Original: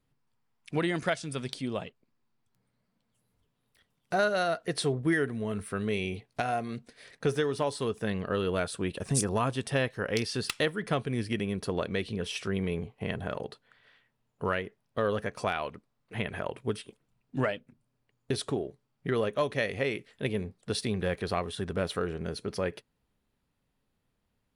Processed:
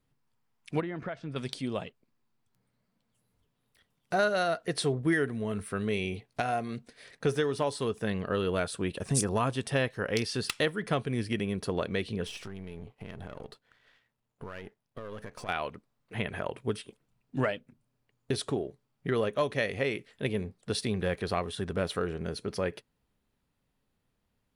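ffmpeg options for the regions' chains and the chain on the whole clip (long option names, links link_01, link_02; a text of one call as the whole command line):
ffmpeg -i in.wav -filter_complex "[0:a]asettb=1/sr,asplit=3[link_01][link_02][link_03];[link_01]atrim=end=0.804[link_04];[link_02]atrim=start=0.8:end=1.36,asetpts=PTS-STARTPTS,afade=type=in:duration=0.004:curve=qsin,afade=type=out:start_time=0.556:duration=0.004:curve=qsin,lowpass=1800,acompressor=threshold=-32dB:ratio=5:attack=3.2:release=140:knee=1:detection=peak[link_05];[link_03]atrim=start=1.356[link_06];[link_04][link_05]acrossfade=duration=0.004:curve1=hsin:curve2=qsin[link_07];[link_07][link_06]acrossfade=duration=0.004:curve1=qsin:curve2=hsin,asettb=1/sr,asplit=3[link_08][link_09][link_10];[link_08]atrim=end=12.274[link_11];[link_09]atrim=start=12.27:end=15.49,asetpts=PTS-STARTPTS,afade=type=in:duration=0.004:curve=qsin,afade=type=out:start_time=3.216:duration=0.004:curve=qsin,aeval=exprs='if(lt(val(0),0),0.447*val(0),val(0))':channel_layout=same,acompressor=threshold=-36dB:ratio=12:attack=3.2:release=140:knee=1:detection=peak[link_12];[link_10]atrim=start=15.486[link_13];[link_11][link_12]acrossfade=duration=0.004:curve1=hsin:curve2=qsin[link_14];[link_14][link_13]acrossfade=duration=0.004:curve1=qsin:curve2=hsin" out.wav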